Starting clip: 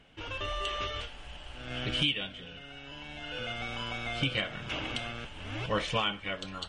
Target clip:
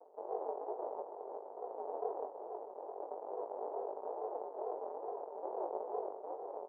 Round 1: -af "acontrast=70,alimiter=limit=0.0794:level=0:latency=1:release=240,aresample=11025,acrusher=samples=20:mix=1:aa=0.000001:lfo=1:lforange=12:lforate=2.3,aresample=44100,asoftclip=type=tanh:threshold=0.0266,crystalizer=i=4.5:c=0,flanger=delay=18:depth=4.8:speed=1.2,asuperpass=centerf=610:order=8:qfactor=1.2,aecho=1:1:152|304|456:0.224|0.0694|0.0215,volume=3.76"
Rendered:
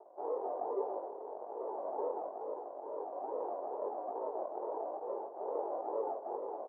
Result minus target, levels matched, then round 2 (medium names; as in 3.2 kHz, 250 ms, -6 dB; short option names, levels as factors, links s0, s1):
decimation with a swept rate: distortion -10 dB
-af "acontrast=70,alimiter=limit=0.0794:level=0:latency=1:release=240,aresample=11025,acrusher=samples=52:mix=1:aa=0.000001:lfo=1:lforange=31.2:lforate=2.3,aresample=44100,asoftclip=type=tanh:threshold=0.0266,crystalizer=i=4.5:c=0,flanger=delay=18:depth=4.8:speed=1.2,asuperpass=centerf=610:order=8:qfactor=1.2,aecho=1:1:152|304|456:0.224|0.0694|0.0215,volume=3.76"